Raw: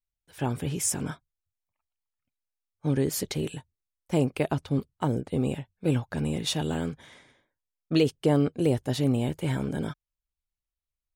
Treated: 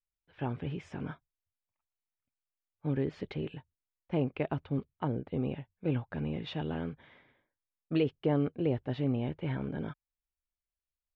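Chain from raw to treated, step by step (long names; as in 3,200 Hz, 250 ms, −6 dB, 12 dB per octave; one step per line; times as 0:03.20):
low-pass filter 3,000 Hz 24 dB per octave
level −6 dB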